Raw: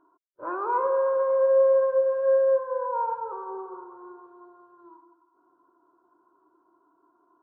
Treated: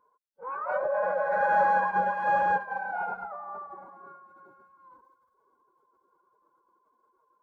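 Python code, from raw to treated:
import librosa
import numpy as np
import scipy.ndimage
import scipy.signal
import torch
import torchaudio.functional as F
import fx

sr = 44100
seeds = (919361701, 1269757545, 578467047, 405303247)

y = fx.pitch_keep_formants(x, sr, semitones=7.5)
y = F.gain(torch.from_numpy(y), -3.5).numpy()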